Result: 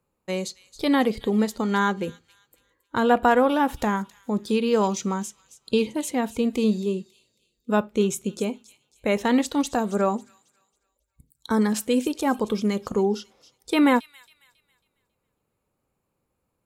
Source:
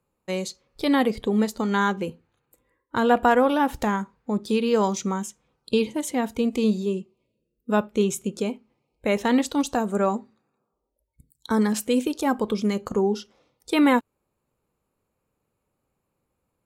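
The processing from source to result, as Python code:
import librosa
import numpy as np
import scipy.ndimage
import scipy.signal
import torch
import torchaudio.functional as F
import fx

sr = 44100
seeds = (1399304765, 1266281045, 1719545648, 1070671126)

y = fx.echo_wet_highpass(x, sr, ms=273, feedback_pct=35, hz=3400.0, wet_db=-13.5)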